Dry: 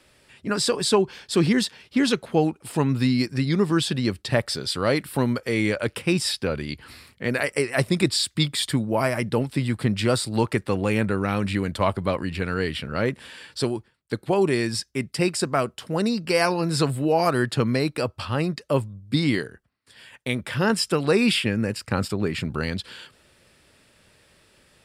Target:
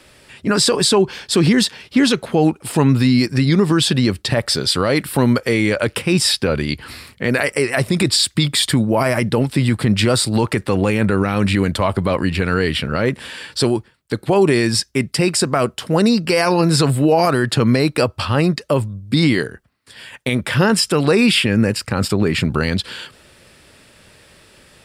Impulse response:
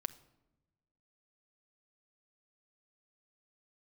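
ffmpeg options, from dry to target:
-af "alimiter=level_in=14.5dB:limit=-1dB:release=50:level=0:latency=1,volume=-4.5dB"

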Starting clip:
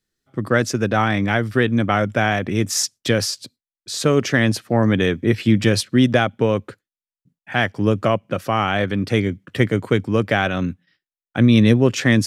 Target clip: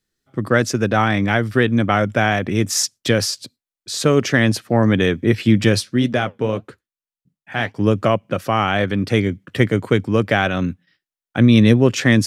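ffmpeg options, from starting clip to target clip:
-filter_complex "[0:a]asplit=3[a][b][c];[a]afade=t=out:st=5.78:d=0.02[d];[b]flanger=delay=4.3:depth=7.5:regen=-65:speed=1.8:shape=sinusoidal,afade=t=in:st=5.78:d=0.02,afade=t=out:st=7.78:d=0.02[e];[c]afade=t=in:st=7.78:d=0.02[f];[d][e][f]amix=inputs=3:normalize=0,volume=1.5dB"

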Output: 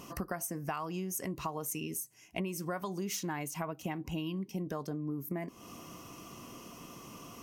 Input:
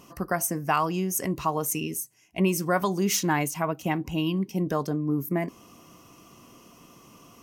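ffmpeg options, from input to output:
-af "acompressor=threshold=-38dB:ratio=6,volume=3dB"

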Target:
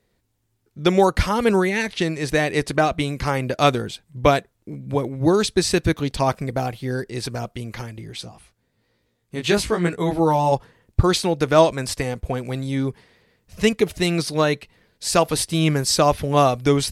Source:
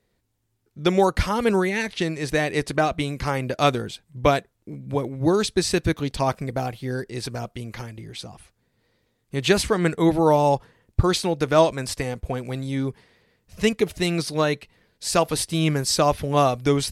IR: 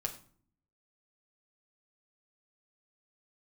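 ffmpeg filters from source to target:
-filter_complex "[0:a]asplit=3[a][b][c];[a]afade=t=out:st=8.23:d=0.02[d];[b]flanger=delay=16.5:depth=3:speed=1.1,afade=t=in:st=8.23:d=0.02,afade=t=out:st=10.51:d=0.02[e];[c]afade=t=in:st=10.51:d=0.02[f];[d][e][f]amix=inputs=3:normalize=0,volume=2.5dB"

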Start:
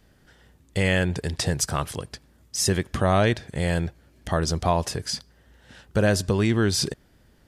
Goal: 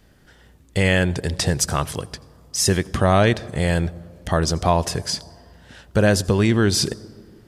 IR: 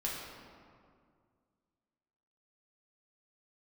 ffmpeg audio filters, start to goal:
-filter_complex "[0:a]asplit=2[a][b];[b]equalizer=f=2.3k:t=o:w=1.4:g=-13[c];[1:a]atrim=start_sample=2205,adelay=83[d];[c][d]afir=irnorm=-1:irlink=0,volume=-21dB[e];[a][e]amix=inputs=2:normalize=0,volume=4dB"

